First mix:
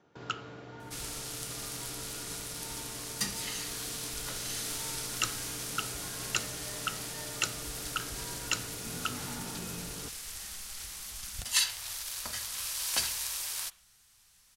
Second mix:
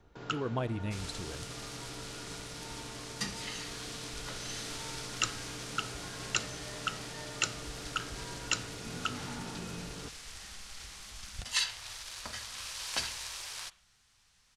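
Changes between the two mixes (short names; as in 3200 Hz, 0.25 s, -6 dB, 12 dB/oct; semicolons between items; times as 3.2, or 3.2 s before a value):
speech: unmuted; second sound: add air absorption 75 m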